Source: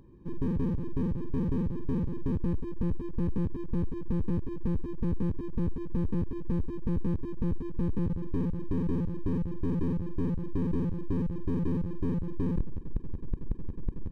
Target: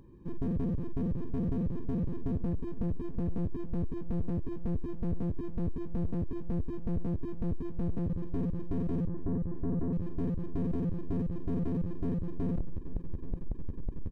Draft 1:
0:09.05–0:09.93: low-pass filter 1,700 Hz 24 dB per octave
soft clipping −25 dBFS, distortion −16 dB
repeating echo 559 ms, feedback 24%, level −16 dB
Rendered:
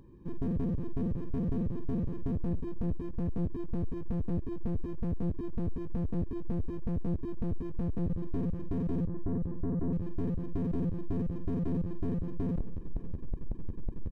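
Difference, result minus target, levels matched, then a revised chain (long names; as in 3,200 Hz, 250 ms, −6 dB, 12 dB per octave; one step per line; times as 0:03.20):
echo 277 ms early
0:09.05–0:09.93: low-pass filter 1,700 Hz 24 dB per octave
soft clipping −25 dBFS, distortion −16 dB
repeating echo 836 ms, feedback 24%, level −16 dB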